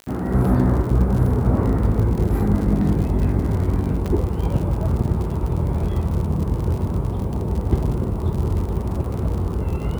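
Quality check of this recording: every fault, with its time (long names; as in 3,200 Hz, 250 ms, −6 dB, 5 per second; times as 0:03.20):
surface crackle 73 per second −27 dBFS
0:04.06–0:04.07: drop-out 5.2 ms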